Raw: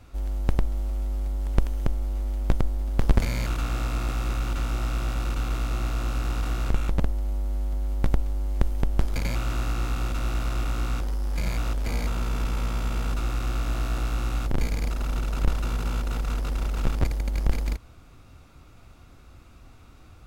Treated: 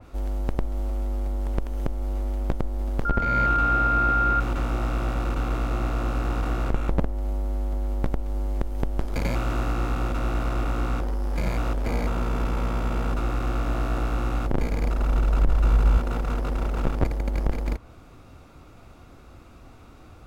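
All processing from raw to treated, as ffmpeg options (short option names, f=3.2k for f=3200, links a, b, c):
-filter_complex "[0:a]asettb=1/sr,asplit=3[a][b][c];[a]atrim=end=3.054[d];[b]atrim=start=3.05:end=4.4,asetpts=PTS-STARTPTS,afade=t=in:d=0.004:c=qsin,afade=t=out:st=1.346:d=0.004:c=qsin,acrossover=split=4400[e][f];[f]acompressor=threshold=-52dB:ratio=4:attack=1:release=60[g];[e][g]amix=inputs=2:normalize=0,aeval=exprs='val(0)+0.0708*sin(2*PI*1400*n/s)':c=same[h];[c]atrim=start=4.396[i];[d][h]acrossfade=d=0.004:c1=hsin:c2=qsin[j];[j][i]acrossfade=d=0.004:c1=qsin:c2=hsin,asettb=1/sr,asplit=3[k][l][m];[k]atrim=end=14.694[n];[l]atrim=start=14.69:end=15.98,asetpts=PTS-STARTPTS,afade=t=in:d=0.004:c=qsin,afade=t=out:st=1.286:d=0.004:c=qsin,asubboost=boost=7.5:cutoff=100,asoftclip=type=hard:threshold=-9.5dB[o];[m]atrim=start=15.976[p];[n][o]acrossfade=d=0.004:c1=hsin:c2=qsin[q];[q][p]acrossfade=d=0.004:c1=qsin:c2=hsin,equalizer=f=490:w=0.38:g=7,alimiter=limit=-9.5dB:level=0:latency=1:release=225,adynamicequalizer=threshold=0.00398:dfrequency=2800:dqfactor=0.7:tfrequency=2800:tqfactor=0.7:attack=5:release=100:ratio=0.375:range=3:mode=cutabove:tftype=highshelf"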